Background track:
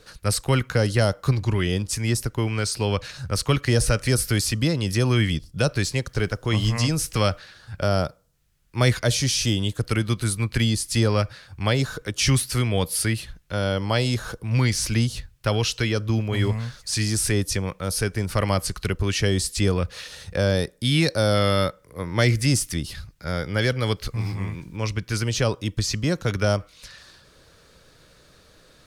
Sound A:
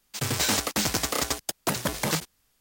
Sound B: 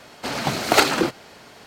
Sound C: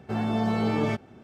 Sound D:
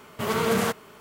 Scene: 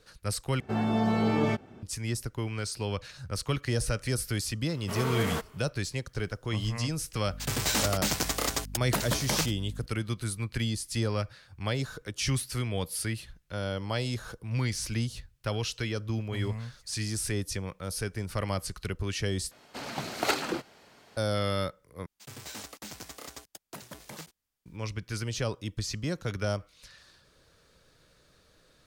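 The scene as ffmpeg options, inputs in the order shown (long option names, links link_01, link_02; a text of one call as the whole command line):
ffmpeg -i bed.wav -i cue0.wav -i cue1.wav -i cue2.wav -i cue3.wav -filter_complex "[1:a]asplit=2[link_01][link_02];[0:a]volume=-9dB[link_03];[link_01]aeval=exprs='val(0)+0.0141*(sin(2*PI*50*n/s)+sin(2*PI*2*50*n/s)/2+sin(2*PI*3*50*n/s)/3+sin(2*PI*4*50*n/s)/4+sin(2*PI*5*50*n/s)/5)':channel_layout=same[link_04];[link_03]asplit=4[link_05][link_06][link_07][link_08];[link_05]atrim=end=0.604[link_09];[3:a]atrim=end=1.23,asetpts=PTS-STARTPTS,volume=-0.5dB[link_10];[link_06]atrim=start=1.826:end=19.514[link_11];[2:a]atrim=end=1.66,asetpts=PTS-STARTPTS,volume=-11.5dB[link_12];[link_07]atrim=start=21.166:end=22.064[link_13];[link_02]atrim=end=2.6,asetpts=PTS-STARTPTS,volume=-17.5dB[link_14];[link_08]atrim=start=24.656[link_15];[4:a]atrim=end=1,asetpts=PTS-STARTPTS,volume=-7.5dB,afade=type=in:duration=0.004:curve=hsin,afade=type=out:start_time=0.996:duration=0.004:curve=hsin,adelay=206829S[link_16];[link_04]atrim=end=2.6,asetpts=PTS-STARTPTS,volume=-3dB,afade=type=in:duration=0.004:curve=hsin,afade=type=out:start_time=2.596:duration=0.004:curve=hsin,adelay=7260[link_17];[link_09][link_10]acrossfade=duration=0.004:curve1=hsin:curve2=hsin[link_18];[link_18][link_11]acrossfade=duration=0.004:curve1=hsin:curve2=hsin[link_19];[link_19][link_12]acrossfade=duration=0.004:curve1=hsin:curve2=hsin[link_20];[link_20][link_13]acrossfade=duration=0.004:curve1=hsin:curve2=hsin[link_21];[link_21][link_14]acrossfade=duration=0.004:curve1=hsin:curve2=hsin[link_22];[link_22][link_15]acrossfade=duration=0.004:curve1=hsin:curve2=hsin[link_23];[link_23][link_16][link_17]amix=inputs=3:normalize=0" out.wav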